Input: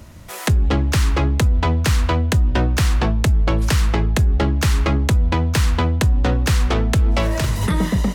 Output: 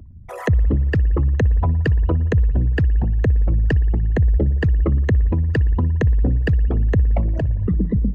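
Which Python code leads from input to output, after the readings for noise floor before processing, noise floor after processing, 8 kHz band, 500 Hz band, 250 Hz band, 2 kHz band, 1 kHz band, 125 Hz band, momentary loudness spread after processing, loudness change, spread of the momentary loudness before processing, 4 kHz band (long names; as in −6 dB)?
−32 dBFS, −32 dBFS, below −20 dB, −2.0 dB, −2.5 dB, −5.5 dB, −10.5 dB, 0.0 dB, 2 LU, −0.5 dB, 2 LU, −16.5 dB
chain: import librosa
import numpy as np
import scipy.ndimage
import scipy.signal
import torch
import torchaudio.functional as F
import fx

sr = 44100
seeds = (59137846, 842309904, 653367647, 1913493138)

y = fx.envelope_sharpen(x, sr, power=3.0)
y = fx.rev_spring(y, sr, rt60_s=2.5, pass_ms=(56,), chirp_ms=65, drr_db=17.0)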